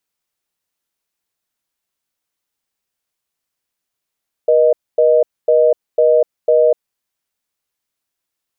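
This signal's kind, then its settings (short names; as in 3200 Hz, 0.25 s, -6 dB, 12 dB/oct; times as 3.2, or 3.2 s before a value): call progress tone reorder tone, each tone -11 dBFS 2.25 s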